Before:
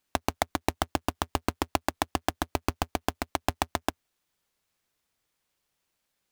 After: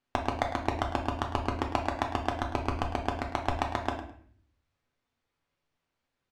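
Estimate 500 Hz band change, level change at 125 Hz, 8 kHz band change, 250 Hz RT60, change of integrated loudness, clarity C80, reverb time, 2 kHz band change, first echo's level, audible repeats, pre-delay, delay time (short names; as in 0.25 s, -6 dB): 0.0 dB, +2.5 dB, -12.5 dB, 0.75 s, -0.5 dB, 9.5 dB, 0.55 s, -1.5 dB, -12.5 dB, 1, 7 ms, 0.105 s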